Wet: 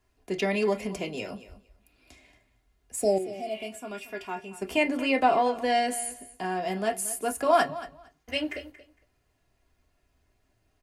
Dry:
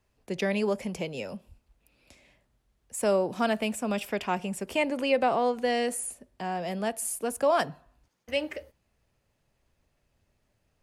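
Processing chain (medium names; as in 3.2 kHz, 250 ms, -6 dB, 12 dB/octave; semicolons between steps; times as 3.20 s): comb 2.9 ms, depth 53%; on a send at -4 dB: reverberation, pre-delay 3 ms; 3.03–3.62 s: on the sum: spectral replace 860–4100 Hz both; 3.18–4.62 s: feedback comb 130 Hz, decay 0.18 s, harmonics odd, mix 80%; feedback delay 229 ms, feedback 16%, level -16 dB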